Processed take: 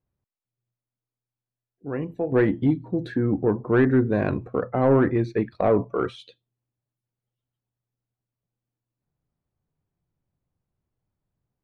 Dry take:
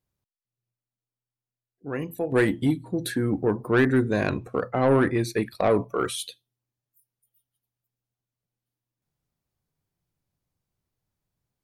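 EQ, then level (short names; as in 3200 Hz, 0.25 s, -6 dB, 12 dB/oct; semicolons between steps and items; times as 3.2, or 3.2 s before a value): air absorption 170 m; high shelf 2100 Hz -11.5 dB; +2.5 dB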